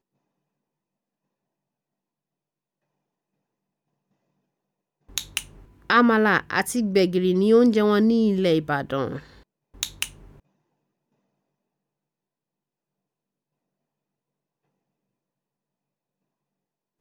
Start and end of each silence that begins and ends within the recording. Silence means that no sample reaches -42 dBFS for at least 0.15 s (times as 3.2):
5.64–5.9
9.41–9.75